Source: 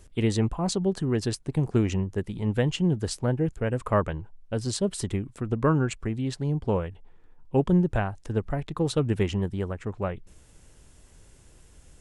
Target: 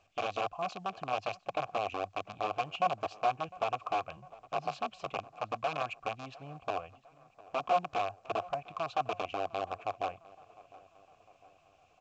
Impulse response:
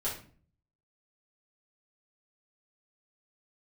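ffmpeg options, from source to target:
-filter_complex "[0:a]equalizer=frequency=100:width_type=o:width=0.67:gain=10,equalizer=frequency=400:width_type=o:width=0.67:gain=-9,equalizer=frequency=2500:width_type=o:width=0.67:gain=5,acompressor=threshold=-21dB:ratio=16,asplit=3[link_01][link_02][link_03];[link_01]afade=type=out:start_time=4.16:duration=0.02[link_04];[link_02]afreqshift=39,afade=type=in:start_time=4.16:duration=0.02,afade=type=out:start_time=5.17:duration=0.02[link_05];[link_03]afade=type=in:start_time=5.17:duration=0.02[link_06];[link_04][link_05][link_06]amix=inputs=3:normalize=0,aeval=exprs='(mod(10*val(0)+1,2)-1)/10':channel_layout=same,asplit=3[link_07][link_08][link_09];[link_07]bandpass=frequency=730:width_type=q:width=8,volume=0dB[link_10];[link_08]bandpass=frequency=1090:width_type=q:width=8,volume=-6dB[link_11];[link_09]bandpass=frequency=2440:width_type=q:width=8,volume=-9dB[link_12];[link_10][link_11][link_12]amix=inputs=3:normalize=0,asplit=2[link_13][link_14];[link_14]adelay=704,lowpass=frequency=2300:poles=1,volume=-20.5dB,asplit=2[link_15][link_16];[link_16]adelay=704,lowpass=frequency=2300:poles=1,volume=0.54,asplit=2[link_17][link_18];[link_18]adelay=704,lowpass=frequency=2300:poles=1,volume=0.54,asplit=2[link_19][link_20];[link_20]adelay=704,lowpass=frequency=2300:poles=1,volume=0.54[link_21];[link_15][link_17][link_19][link_21]amix=inputs=4:normalize=0[link_22];[link_13][link_22]amix=inputs=2:normalize=0,volume=5.5dB" -ar 16000 -c:a pcm_mulaw

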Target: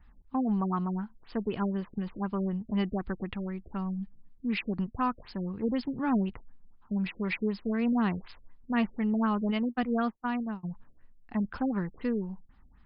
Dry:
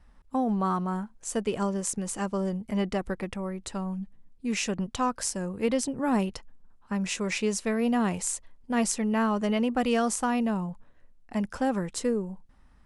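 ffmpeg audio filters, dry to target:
ffmpeg -i in.wav -filter_complex "[0:a]asplit=3[link_01][link_02][link_03];[link_01]afade=type=out:start_time=9.5:duration=0.02[link_04];[link_02]agate=range=-36dB:threshold=-25dB:ratio=16:detection=peak,afade=type=in:start_time=9.5:duration=0.02,afade=type=out:start_time=10.63:duration=0.02[link_05];[link_03]afade=type=in:start_time=10.63:duration=0.02[link_06];[link_04][link_05][link_06]amix=inputs=3:normalize=0,equalizer=frequency=550:width=1.9:gain=-9.5,afftfilt=real='re*lt(b*sr/1024,620*pow(5300/620,0.5+0.5*sin(2*PI*4*pts/sr)))':imag='im*lt(b*sr/1024,620*pow(5300/620,0.5+0.5*sin(2*PI*4*pts/sr)))':win_size=1024:overlap=0.75" out.wav

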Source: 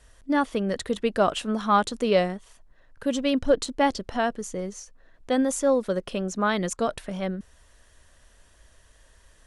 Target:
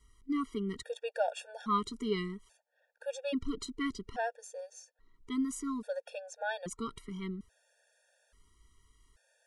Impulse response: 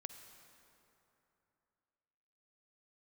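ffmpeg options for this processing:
-af "afftfilt=real='re*gt(sin(2*PI*0.6*pts/sr)*(1-2*mod(floor(b*sr/1024/470),2)),0)':imag='im*gt(sin(2*PI*0.6*pts/sr)*(1-2*mod(floor(b*sr/1024/470),2)),0)':win_size=1024:overlap=0.75,volume=-8dB"

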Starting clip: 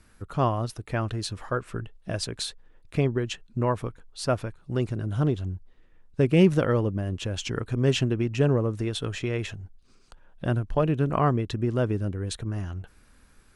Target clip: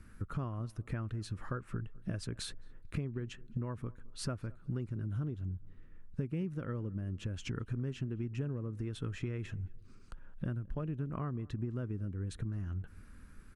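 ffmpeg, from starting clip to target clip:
ffmpeg -i in.wav -filter_complex "[0:a]firequalizer=gain_entry='entry(220,0);entry(400,-6);entry(750,-13);entry(1300,-4);entry(3500,-13);entry(10000,-10)':delay=0.05:min_phase=1,acompressor=threshold=-39dB:ratio=8,asplit=2[link_01][link_02];[link_02]adelay=216,lowpass=frequency=1400:poles=1,volume=-22.5dB,asplit=2[link_03][link_04];[link_04]adelay=216,lowpass=frequency=1400:poles=1,volume=0.39,asplit=2[link_05][link_06];[link_06]adelay=216,lowpass=frequency=1400:poles=1,volume=0.39[link_07];[link_03][link_05][link_07]amix=inputs=3:normalize=0[link_08];[link_01][link_08]amix=inputs=2:normalize=0,volume=4.5dB" out.wav

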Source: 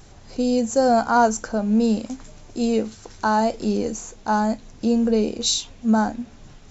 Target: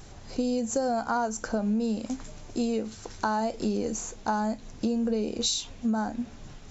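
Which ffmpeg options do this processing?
ffmpeg -i in.wav -af "acompressor=threshold=-24dB:ratio=10" out.wav

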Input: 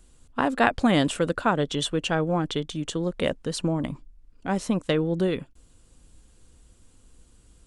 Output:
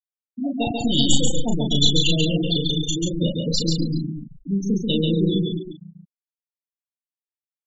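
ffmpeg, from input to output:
ffmpeg -i in.wav -filter_complex "[0:a]aeval=exprs='(mod(2*val(0)+1,2)-1)/2':channel_layout=same,tiltshelf=frequency=650:gain=8,aexciter=amount=14.2:drive=9.1:freq=2800,asettb=1/sr,asplit=3[link_01][link_02][link_03];[link_01]atrim=end=0.744[link_04];[link_02]atrim=start=0.74:end=1.36,asetpts=PTS-STARTPTS,afade=type=in:duration=0.004:curve=qsin,afade=type=out:start_time=0.616:duration=0.004:curve=qsin,aemphasis=mode=production:type=bsi[link_05];[link_03]atrim=start=1.356[link_06];[link_04][link_05]acrossfade=duration=0.004:curve1=hsin:curve2=qsin[link_07];[link_07][link_06]acrossfade=duration=0.004:curve1=qsin:curve2=hsin,afftfilt=real='re*gte(hypot(re,im),0.1)':imag='im*gte(hypot(re,im),0.1)':win_size=1024:overlap=0.75,aeval=exprs='clip(val(0),-1,0.112)':channel_layout=same,afftdn=noise_reduction=19:noise_floor=-27,asplit=2[link_08][link_09];[link_09]aecho=0:1:244|257|614|825:0.473|0.282|0.224|0.2[link_10];[link_08][link_10]amix=inputs=2:normalize=0,aresample=16000,aresample=44100,afftfilt=real='re*gte(hypot(re,im),0.398)':imag='im*gte(hypot(re,im),0.398)':win_size=1024:overlap=0.75,asplit=2[link_11][link_12];[link_12]adelay=36,volume=-4dB[link_13];[link_11][link_13]amix=inputs=2:normalize=0,asplit=2[link_14][link_15];[link_15]aecho=0:1:139:0.668[link_16];[link_14][link_16]amix=inputs=2:normalize=0,volume=-3.5dB" out.wav

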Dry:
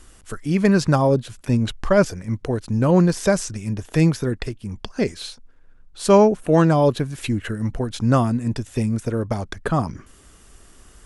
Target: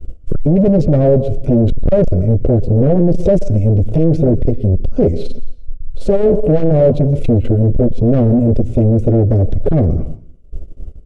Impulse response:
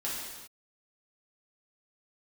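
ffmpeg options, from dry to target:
-filter_complex "[0:a]asplit=2[link_01][link_02];[link_02]acompressor=threshold=-26dB:ratio=12,volume=-3dB[link_03];[link_01][link_03]amix=inputs=2:normalize=0,asuperstop=centerf=1700:order=4:qfactor=3.8,asplit=2[link_04][link_05];[link_05]adelay=12,volume=-9dB[link_06];[link_04][link_06]amix=inputs=2:normalize=0,agate=range=-28dB:threshold=-39dB:ratio=16:detection=peak,asplit=2[link_07][link_08];[1:a]atrim=start_sample=2205,asetrate=74970,aresample=44100,adelay=118[link_09];[link_08][link_09]afir=irnorm=-1:irlink=0,volume=-19dB[link_10];[link_07][link_10]amix=inputs=2:normalize=0,volume=18dB,asoftclip=hard,volume=-18dB,aemphasis=mode=reproduction:type=riaa,deesser=0.7,asoftclip=type=tanh:threshold=-16.5dB,lowshelf=frequency=750:width_type=q:width=3:gain=9.5,volume=-2dB"

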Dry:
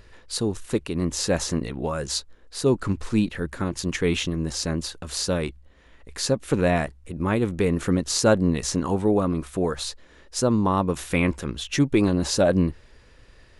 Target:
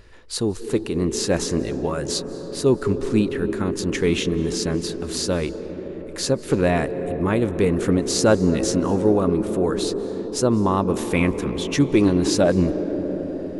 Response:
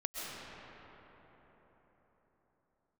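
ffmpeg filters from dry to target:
-filter_complex "[0:a]asplit=2[link_01][link_02];[link_02]equalizer=frequency=360:width_type=o:width=1.2:gain=14[link_03];[1:a]atrim=start_sample=2205,asetrate=29988,aresample=44100[link_04];[link_03][link_04]afir=irnorm=-1:irlink=0,volume=-18dB[link_05];[link_01][link_05]amix=inputs=2:normalize=0"

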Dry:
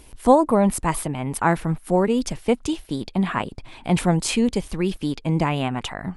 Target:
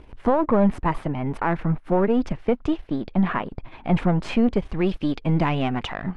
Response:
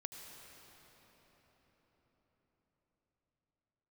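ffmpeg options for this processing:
-af "aeval=exprs='if(lt(val(0),0),0.447*val(0),val(0))':channel_layout=same,asetnsamples=nb_out_samples=441:pad=0,asendcmd='4.76 lowpass f 3200',lowpass=2000,alimiter=limit=-14.5dB:level=0:latency=1:release=154,volume=4.5dB"

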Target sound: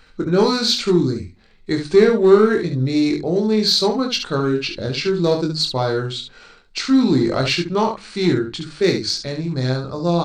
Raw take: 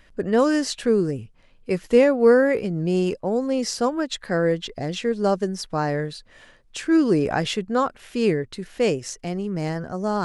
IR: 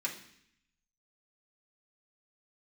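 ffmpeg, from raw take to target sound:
-filter_complex "[0:a]equalizer=frequency=5300:width_type=o:width=0.47:gain=12.5,bandreject=frequency=60:width_type=h:width=6,bandreject=frequency=120:width_type=h:width=6,bandreject=frequency=180:width_type=h:width=6,bandreject=frequency=240:width_type=h:width=6,bandreject=frequency=300:width_type=h:width=6,bandreject=frequency=360:width_type=h:width=6,asplit=2[link_01][link_02];[link_02]asoftclip=type=hard:threshold=-16dB,volume=-5dB[link_03];[link_01][link_03]amix=inputs=2:normalize=0,asetrate=36028,aresample=44100,atempo=1.22405,aecho=1:1:23|70:0.562|0.447,asplit=2[link_04][link_05];[1:a]atrim=start_sample=2205,afade=type=out:start_time=0.32:duration=0.01,atrim=end_sample=14553[link_06];[link_05][link_06]afir=irnorm=-1:irlink=0,volume=-21dB[link_07];[link_04][link_07]amix=inputs=2:normalize=0,volume=-1.5dB"

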